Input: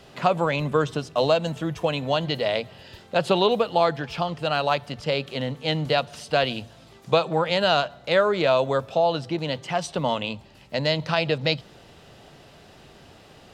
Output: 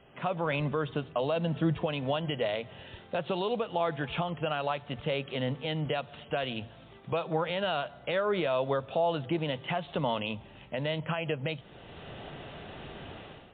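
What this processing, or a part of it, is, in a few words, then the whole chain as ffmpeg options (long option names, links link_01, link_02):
low-bitrate web radio: -filter_complex "[0:a]asettb=1/sr,asplit=3[link_01][link_02][link_03];[link_01]atrim=end=1.364[link_04];[link_02]atrim=start=1.36:end=1.86,asetpts=PTS-STARTPTS,afade=type=in:duration=0.004:curve=qsin,afade=type=out:start_time=0.496:duration=0.004:curve=qsin,equalizer=frequency=190:width=0.57:gain=5.5[link_05];[link_03]atrim=start=1.856[link_06];[link_04][link_05]acrossfade=duration=0.004:curve1=hsin:curve2=qsin[link_07];[link_07][link_06]acrossfade=duration=0.004:curve1=qsin:curve2=hsin,dynaudnorm=framelen=100:gausssize=7:maxgain=14dB,alimiter=limit=-10.5dB:level=0:latency=1:release=231,volume=-8dB" -ar 8000 -c:a libmp3lame -b:a 32k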